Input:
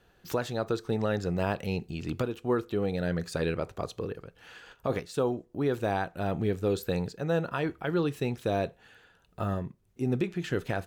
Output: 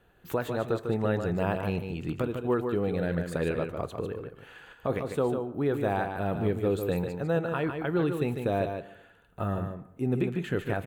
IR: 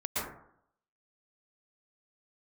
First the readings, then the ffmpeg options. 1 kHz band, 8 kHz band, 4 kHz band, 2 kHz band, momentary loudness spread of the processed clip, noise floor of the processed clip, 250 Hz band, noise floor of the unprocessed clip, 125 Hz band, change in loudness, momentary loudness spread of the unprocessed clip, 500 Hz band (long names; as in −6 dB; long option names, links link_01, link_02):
+1.0 dB, can't be measured, −4.0 dB, +0.5 dB, 8 LU, −58 dBFS, +1.5 dB, −65 dBFS, +1.5 dB, +1.0 dB, 7 LU, +1.5 dB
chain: -filter_complex "[0:a]equalizer=frequency=5300:width=1.8:gain=-14.5,aecho=1:1:149:0.473,asplit=2[link_01][link_02];[1:a]atrim=start_sample=2205[link_03];[link_02][link_03]afir=irnorm=-1:irlink=0,volume=-23.5dB[link_04];[link_01][link_04]amix=inputs=2:normalize=0"